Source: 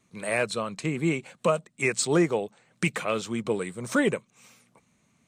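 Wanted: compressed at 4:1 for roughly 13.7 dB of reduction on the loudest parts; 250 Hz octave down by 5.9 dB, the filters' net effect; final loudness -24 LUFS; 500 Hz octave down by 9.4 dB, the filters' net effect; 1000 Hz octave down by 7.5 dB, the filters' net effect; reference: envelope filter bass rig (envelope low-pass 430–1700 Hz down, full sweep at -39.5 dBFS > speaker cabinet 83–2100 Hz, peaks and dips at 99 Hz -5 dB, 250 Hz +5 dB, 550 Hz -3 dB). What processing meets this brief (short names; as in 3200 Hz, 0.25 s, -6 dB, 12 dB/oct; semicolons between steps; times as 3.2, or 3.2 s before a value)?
bell 250 Hz -7.5 dB; bell 500 Hz -6.5 dB; bell 1000 Hz -8 dB; compressor 4:1, threshold -40 dBFS; envelope low-pass 430–1700 Hz down, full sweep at -39.5 dBFS; speaker cabinet 83–2100 Hz, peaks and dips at 99 Hz -5 dB, 250 Hz +5 dB, 550 Hz -3 dB; gain +16.5 dB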